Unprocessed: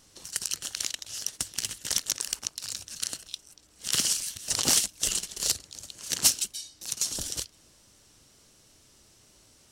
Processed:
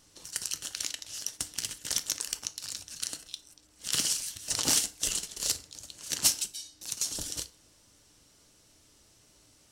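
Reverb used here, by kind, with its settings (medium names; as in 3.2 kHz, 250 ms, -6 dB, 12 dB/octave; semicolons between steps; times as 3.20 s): FDN reverb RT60 0.45 s, low-frequency decay 0.85×, high-frequency decay 0.7×, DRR 9.5 dB; trim -3 dB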